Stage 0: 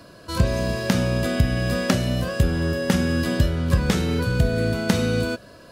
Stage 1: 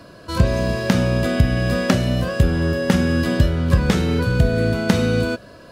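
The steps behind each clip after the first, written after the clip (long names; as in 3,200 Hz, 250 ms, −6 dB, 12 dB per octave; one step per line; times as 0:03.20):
high-shelf EQ 4,900 Hz −6 dB
level +3.5 dB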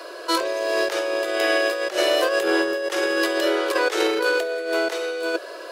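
Butterworth high-pass 330 Hz 96 dB per octave
compressor whose output falls as the input rises −27 dBFS, ratio −0.5
level +5.5 dB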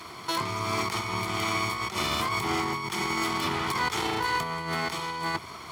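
lower of the sound and its delayed copy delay 0.9 ms
high-pass filter 79 Hz 24 dB per octave
brickwall limiter −16.5 dBFS, peak gain reduction 6.5 dB
level −2 dB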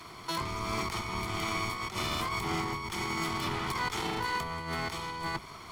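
sub-octave generator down 1 octave, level −1 dB
level −5 dB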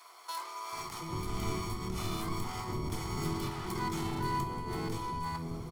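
parametric band 2,400 Hz −11 dB 2.6 octaves
multiband delay without the direct sound highs, lows 720 ms, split 610 Hz
rectangular room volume 49 cubic metres, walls mixed, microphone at 0.34 metres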